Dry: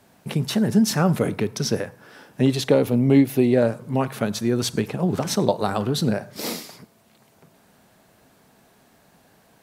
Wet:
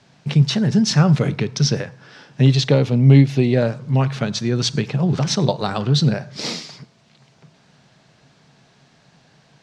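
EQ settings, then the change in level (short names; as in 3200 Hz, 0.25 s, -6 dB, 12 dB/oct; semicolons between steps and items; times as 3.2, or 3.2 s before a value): LPF 5800 Hz 24 dB/oct; bell 140 Hz +14.5 dB 0.47 oct; high shelf 2100 Hz +10.5 dB; -1.5 dB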